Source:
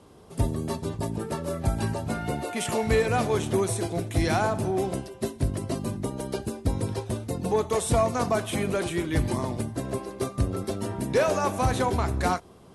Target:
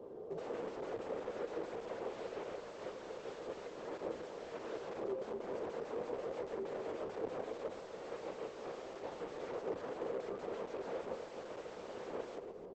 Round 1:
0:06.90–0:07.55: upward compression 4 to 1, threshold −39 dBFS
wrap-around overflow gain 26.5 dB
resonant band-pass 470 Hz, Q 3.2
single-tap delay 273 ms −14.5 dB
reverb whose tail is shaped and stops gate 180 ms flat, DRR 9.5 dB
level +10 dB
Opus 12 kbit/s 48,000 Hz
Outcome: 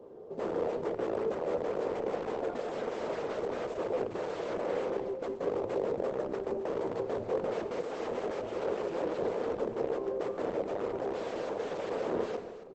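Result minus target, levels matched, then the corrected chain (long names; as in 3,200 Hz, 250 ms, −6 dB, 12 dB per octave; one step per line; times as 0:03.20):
wrap-around overflow: distortion −18 dB
0:06.90–0:07.55: upward compression 4 to 1, threshold −39 dBFS
wrap-around overflow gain 34.5 dB
resonant band-pass 470 Hz, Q 3.2
single-tap delay 273 ms −14.5 dB
reverb whose tail is shaped and stops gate 180 ms flat, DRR 9.5 dB
level +10 dB
Opus 12 kbit/s 48,000 Hz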